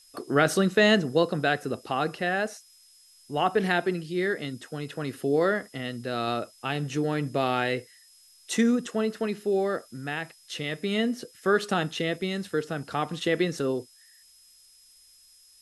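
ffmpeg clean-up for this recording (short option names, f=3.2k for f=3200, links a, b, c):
-af "bandreject=f=5.1k:w=30,afftdn=nr=15:nf=-57"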